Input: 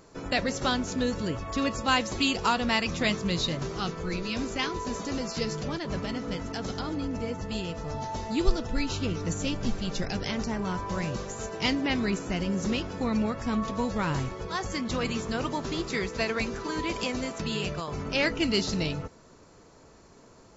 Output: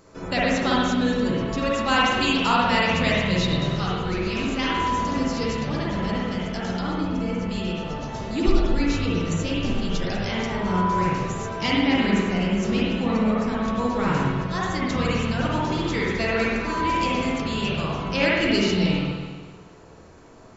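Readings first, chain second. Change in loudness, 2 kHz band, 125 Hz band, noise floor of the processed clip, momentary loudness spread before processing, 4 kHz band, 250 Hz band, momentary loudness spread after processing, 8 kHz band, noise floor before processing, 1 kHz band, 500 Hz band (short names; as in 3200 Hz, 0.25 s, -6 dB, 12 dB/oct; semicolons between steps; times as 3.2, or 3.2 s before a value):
+6.0 dB, +6.5 dB, +7.0 dB, -46 dBFS, 7 LU, +4.0 dB, +6.5 dB, 7 LU, n/a, -54 dBFS, +8.0 dB, +6.0 dB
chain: spring tank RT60 1.4 s, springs 49/60 ms, chirp 65 ms, DRR -5.5 dB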